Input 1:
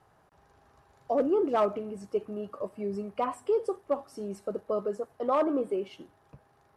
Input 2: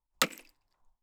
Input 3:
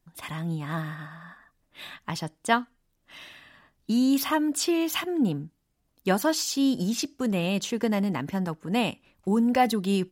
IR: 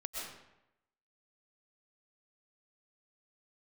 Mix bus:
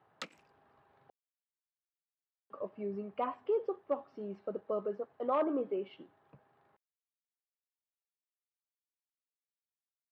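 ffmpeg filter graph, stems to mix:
-filter_complex "[0:a]lowpass=frequency=3600:width=0.5412,lowpass=frequency=3600:width=1.3066,volume=-5dB,asplit=3[link_01][link_02][link_03];[link_01]atrim=end=1.1,asetpts=PTS-STARTPTS,afade=type=out:start_time=1.096:duration=0.004:curve=hsin[link_04];[link_02]atrim=start=1.1:end=2.5,asetpts=PTS-STARTPTS,volume=0[link_05];[link_03]atrim=start=2.5,asetpts=PTS-STARTPTS,afade=type=in:duration=0.004:curve=hsin[link_06];[link_04][link_05][link_06]concat=n=3:v=0:a=1[link_07];[1:a]volume=-15.5dB[link_08];[link_07][link_08]amix=inputs=2:normalize=0,highpass=140,lowpass=5700"

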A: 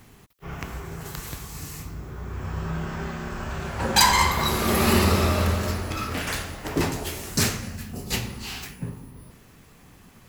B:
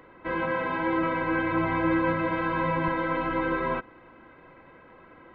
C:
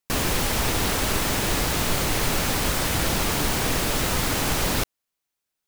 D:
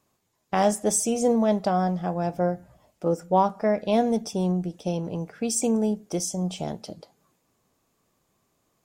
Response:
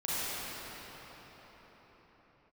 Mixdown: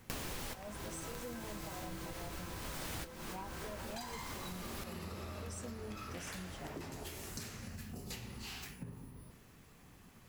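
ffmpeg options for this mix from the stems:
-filter_complex "[0:a]acompressor=threshold=-32dB:ratio=3,volume=-8.5dB[link_01];[1:a]volume=-19dB[link_02];[2:a]volume=-2dB[link_03];[3:a]asoftclip=type=tanh:threshold=-15.5dB,asplit=2[link_04][link_05];[link_05]adelay=5.6,afreqshift=2.3[link_06];[link_04][link_06]amix=inputs=2:normalize=1,volume=-14dB,asplit=2[link_07][link_08];[link_08]apad=whole_len=254482[link_09];[link_03][link_09]sidechaincompress=threshold=-57dB:ratio=8:attack=28:release=405[link_10];[link_01][link_02][link_10][link_07]amix=inputs=4:normalize=0,acompressor=threshold=-41dB:ratio=6"

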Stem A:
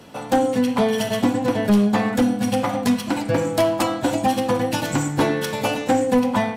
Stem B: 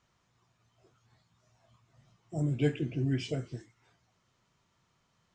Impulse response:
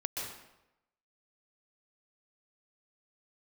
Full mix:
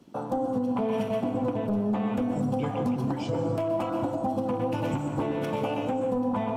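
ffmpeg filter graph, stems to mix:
-filter_complex "[0:a]afwtdn=0.0316,equalizer=frequency=1800:width_type=o:width=0.61:gain=-10.5,acompressor=threshold=-19dB:ratio=6,volume=-4.5dB,asplit=2[link_01][link_02];[link_02]volume=-3.5dB[link_03];[1:a]volume=0dB,asplit=2[link_04][link_05];[link_05]volume=-10dB[link_06];[2:a]atrim=start_sample=2205[link_07];[link_03][link_06]amix=inputs=2:normalize=0[link_08];[link_08][link_07]afir=irnorm=-1:irlink=0[link_09];[link_01][link_04][link_09]amix=inputs=3:normalize=0,alimiter=limit=-19dB:level=0:latency=1:release=293"

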